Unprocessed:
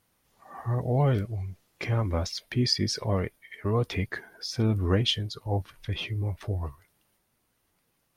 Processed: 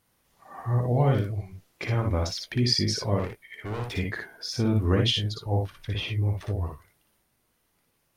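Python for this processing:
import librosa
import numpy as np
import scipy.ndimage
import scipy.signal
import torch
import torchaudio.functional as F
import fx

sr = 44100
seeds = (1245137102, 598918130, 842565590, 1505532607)

y = fx.overload_stage(x, sr, gain_db=31.5, at=(3.19, 3.97))
y = fx.room_early_taps(y, sr, ms=(58, 76), db=(-3.5, -13.0))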